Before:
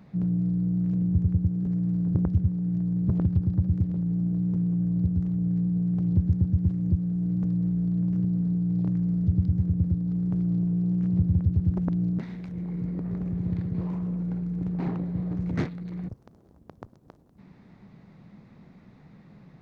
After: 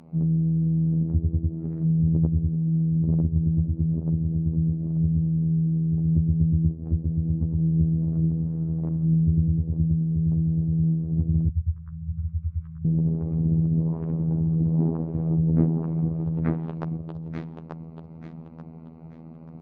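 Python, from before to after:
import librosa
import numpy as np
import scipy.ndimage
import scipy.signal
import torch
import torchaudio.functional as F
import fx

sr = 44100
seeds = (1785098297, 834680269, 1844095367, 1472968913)

p1 = fx.wiener(x, sr, points=25)
p2 = fx.air_absorb(p1, sr, metres=64.0)
p3 = p2 + fx.echo_feedback(p2, sr, ms=885, feedback_pct=33, wet_db=-4.5, dry=0)
p4 = fx.robotise(p3, sr, hz=80.9)
p5 = fx.low_shelf(p4, sr, hz=85.0, db=-11.0)
p6 = fx.env_lowpass_down(p5, sr, base_hz=530.0, full_db=-27.5)
p7 = fx.rider(p6, sr, range_db=5, speed_s=2.0)
p8 = fx.cheby2_bandstop(p7, sr, low_hz=200.0, high_hz=790.0, order=4, stop_db=40, at=(11.49, 12.85))
y = p8 * 10.0 ** (6.5 / 20.0)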